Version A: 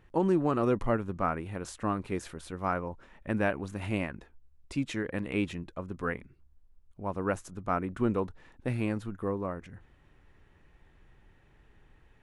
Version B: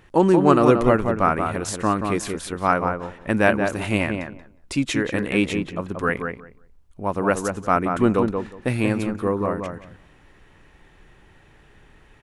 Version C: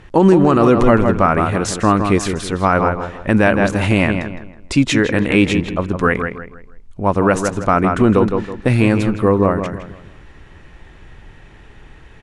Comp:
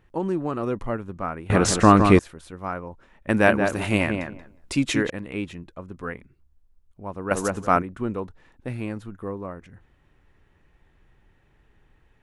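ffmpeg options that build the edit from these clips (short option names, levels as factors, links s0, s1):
-filter_complex "[1:a]asplit=2[s0][s1];[0:a]asplit=4[s2][s3][s4][s5];[s2]atrim=end=1.502[s6];[2:a]atrim=start=1.498:end=2.192[s7];[s3]atrim=start=2.188:end=3.292[s8];[s0]atrim=start=3.288:end=5.102[s9];[s4]atrim=start=5.098:end=7.312[s10];[s1]atrim=start=7.308:end=7.822[s11];[s5]atrim=start=7.818[s12];[s6][s7]acrossfade=d=0.004:c1=hsin:c2=hsin[s13];[s13][s8]acrossfade=d=0.004:c1=hsin:c2=hsin[s14];[s14][s9]acrossfade=d=0.004:c1=hsin:c2=hsin[s15];[s15][s10]acrossfade=d=0.004:c1=hsin:c2=hsin[s16];[s16][s11]acrossfade=d=0.004:c1=hsin:c2=hsin[s17];[s17][s12]acrossfade=d=0.004:c1=hsin:c2=hsin"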